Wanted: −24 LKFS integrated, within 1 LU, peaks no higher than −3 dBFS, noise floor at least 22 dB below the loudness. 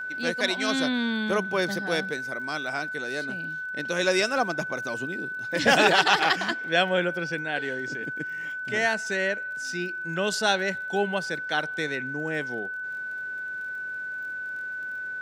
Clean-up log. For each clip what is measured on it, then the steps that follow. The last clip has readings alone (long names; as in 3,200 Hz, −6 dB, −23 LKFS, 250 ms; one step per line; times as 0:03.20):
crackle rate 33 per second; interfering tone 1,500 Hz; level of the tone −31 dBFS; integrated loudness −26.5 LKFS; sample peak −3.0 dBFS; target loudness −24.0 LKFS
→ click removal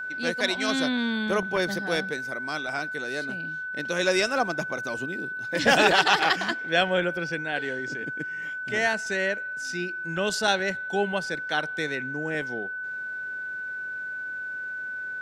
crackle rate 0.066 per second; interfering tone 1,500 Hz; level of the tone −31 dBFS
→ notch filter 1,500 Hz, Q 30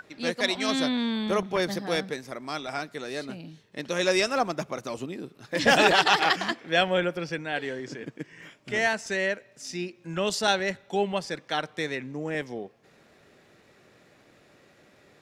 interfering tone none found; integrated loudness −27.0 LKFS; sample peak −4.0 dBFS; target loudness −24.0 LKFS
→ level +3 dB
brickwall limiter −3 dBFS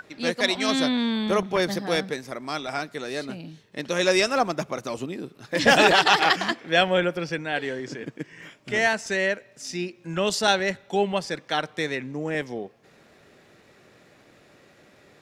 integrated loudness −24.0 LKFS; sample peak −3.0 dBFS; background noise floor −56 dBFS